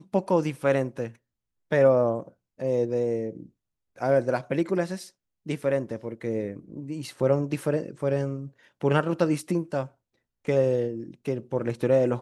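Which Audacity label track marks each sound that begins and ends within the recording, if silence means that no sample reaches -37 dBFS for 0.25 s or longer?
1.720000	2.280000	sound
2.600000	3.460000	sound
4.000000	5.070000	sound
5.460000	8.480000	sound
8.810000	9.860000	sound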